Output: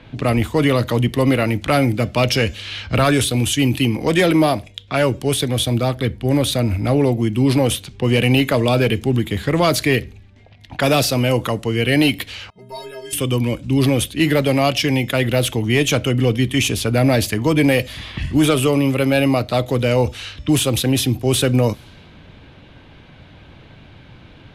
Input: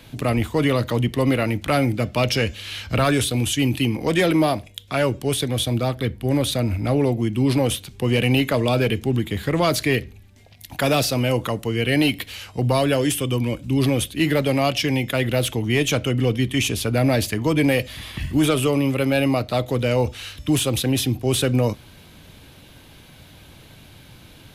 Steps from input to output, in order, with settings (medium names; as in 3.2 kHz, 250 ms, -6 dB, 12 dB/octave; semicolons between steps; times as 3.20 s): level-controlled noise filter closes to 2.4 kHz, open at -19 dBFS; 12.50–13.13 s: inharmonic resonator 190 Hz, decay 0.56 s, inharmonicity 0.03; trim +3.5 dB